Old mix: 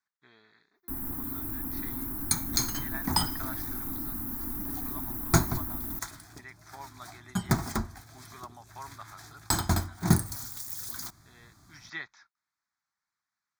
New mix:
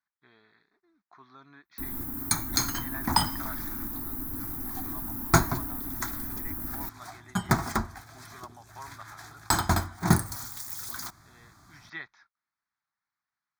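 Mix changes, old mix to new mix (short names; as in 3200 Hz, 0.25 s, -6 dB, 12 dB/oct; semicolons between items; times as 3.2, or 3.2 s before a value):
speech: add air absorption 130 m; first sound: entry +0.90 s; second sound: add bell 1200 Hz +6.5 dB 2.3 oct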